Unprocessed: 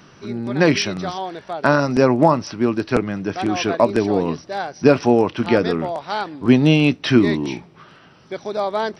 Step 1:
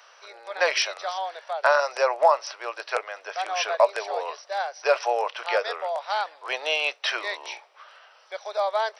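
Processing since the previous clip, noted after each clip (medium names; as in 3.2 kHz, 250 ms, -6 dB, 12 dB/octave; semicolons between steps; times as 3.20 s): steep high-pass 530 Hz 48 dB/octave; trim -2 dB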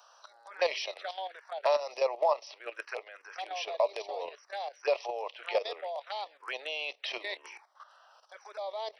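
touch-sensitive phaser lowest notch 340 Hz, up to 1.5 kHz, full sweep at -24.5 dBFS; level held to a coarse grid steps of 12 dB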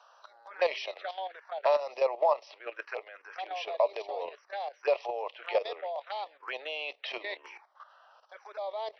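distance through air 190 m; trim +2 dB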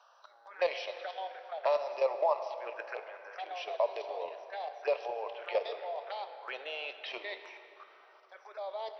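plate-style reverb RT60 3.4 s, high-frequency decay 0.65×, DRR 8 dB; trim -3.5 dB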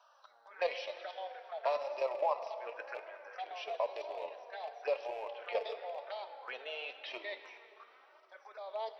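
rattle on loud lows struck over -53 dBFS, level -40 dBFS; flange 0.97 Hz, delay 3 ms, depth 1.7 ms, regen +44%; trim +1 dB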